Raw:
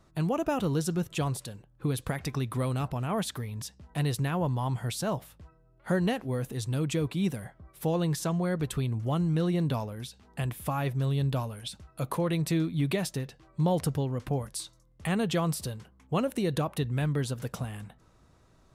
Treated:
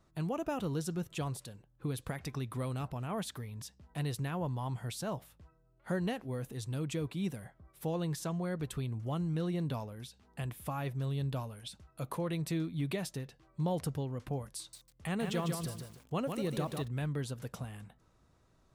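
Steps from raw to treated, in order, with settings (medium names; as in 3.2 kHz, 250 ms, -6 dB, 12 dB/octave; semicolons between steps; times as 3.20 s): 14.58–16.88 s: bit-crushed delay 149 ms, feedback 35%, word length 8-bit, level -5 dB; trim -7 dB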